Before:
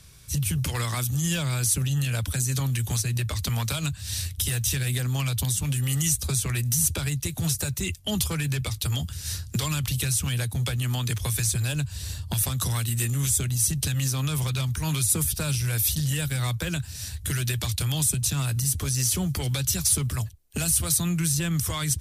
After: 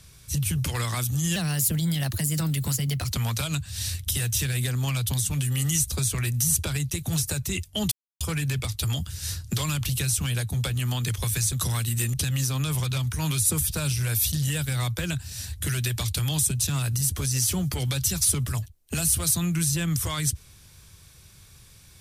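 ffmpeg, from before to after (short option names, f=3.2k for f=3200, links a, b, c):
-filter_complex "[0:a]asplit=6[a][b][c][d][e][f];[a]atrim=end=1.364[g];[b]atrim=start=1.36:end=3.42,asetpts=PTS-STARTPTS,asetrate=52038,aresample=44100,atrim=end_sample=76988,asetpts=PTS-STARTPTS[h];[c]atrim=start=3.416:end=8.23,asetpts=PTS-STARTPTS,afade=t=out:st=4.81:d=0.004:c=hsin,apad=pad_dur=0.29[i];[d]atrim=start=8.23:end=11.552,asetpts=PTS-STARTPTS,afade=t=in:d=0.004:c=hsin[j];[e]atrim=start=12.528:end=13.142[k];[f]atrim=start=13.768[l];[g][h]acrossfade=d=0.004:c1=hsin:c2=hsin[m];[i][j]concat=n=2:v=0:a=1[n];[m][n]acrossfade=d=0.004:c1=hsin:c2=hsin[o];[o][k]acrossfade=d=0.004:c1=hsin:c2=hsin[p];[p][l]acrossfade=d=0.004:c1=hsin:c2=hsin"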